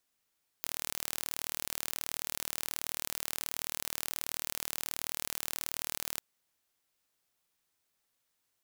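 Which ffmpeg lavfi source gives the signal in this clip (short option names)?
-f lavfi -i "aevalsrc='0.398*eq(mod(n,1142),0)':d=5.55:s=44100"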